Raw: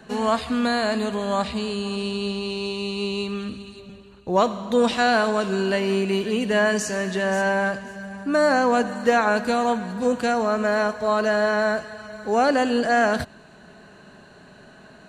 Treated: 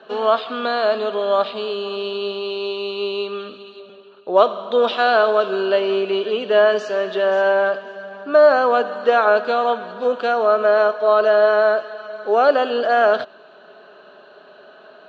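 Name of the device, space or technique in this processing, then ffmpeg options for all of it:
phone earpiece: -af "highpass=400,equalizer=f=410:t=q:w=4:g=8,equalizer=f=610:t=q:w=4:g=9,equalizer=f=1.3k:t=q:w=4:g=9,equalizer=f=2k:t=q:w=4:g=-8,equalizer=f=3.3k:t=q:w=4:g=8,lowpass=f=4.2k:w=0.5412,lowpass=f=4.2k:w=1.3066"

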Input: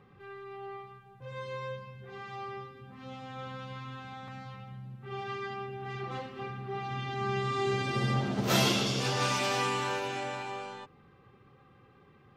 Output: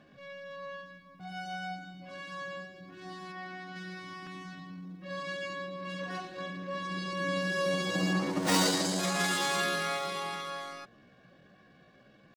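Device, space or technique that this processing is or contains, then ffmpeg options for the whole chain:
chipmunk voice: -filter_complex "[0:a]asetrate=62367,aresample=44100,atempo=0.707107,asplit=3[a][b][c];[a]afade=t=out:st=3.31:d=0.02[d];[b]bass=f=250:g=-6,treble=f=4k:g=-10,afade=t=in:st=3.31:d=0.02,afade=t=out:st=3.75:d=0.02[e];[c]afade=t=in:st=3.75:d=0.02[f];[d][e][f]amix=inputs=3:normalize=0"

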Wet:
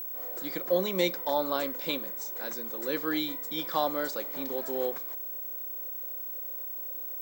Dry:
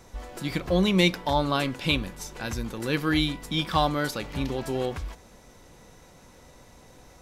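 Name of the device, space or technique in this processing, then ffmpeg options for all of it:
old television with a line whistle: -af "highpass=f=220:w=0.5412,highpass=f=220:w=1.3066,equalizer=f=220:t=q:w=4:g=-5,equalizer=f=530:t=q:w=4:g=7,equalizer=f=2.7k:t=q:w=4:g=-9,equalizer=f=7.6k:t=q:w=4:g=5,lowpass=f=8.3k:w=0.5412,lowpass=f=8.3k:w=1.3066,aeval=exprs='val(0)+0.0355*sin(2*PI*15734*n/s)':c=same,volume=-5.5dB"

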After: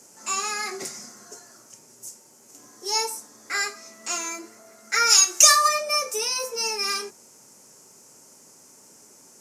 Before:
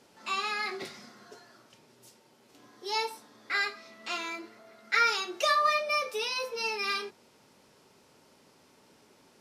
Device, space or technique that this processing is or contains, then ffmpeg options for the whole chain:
budget condenser microphone: -filter_complex "[0:a]highpass=95,highshelf=f=5k:t=q:w=3:g=11,asplit=3[a][b][c];[a]afade=t=out:st=5.09:d=0.02[d];[b]tiltshelf=f=850:g=-9.5,afade=t=in:st=5.09:d=0.02,afade=t=out:st=5.67:d=0.02[e];[c]afade=t=in:st=5.67:d=0.02[f];[d][e][f]amix=inputs=3:normalize=0,volume=3.5dB"

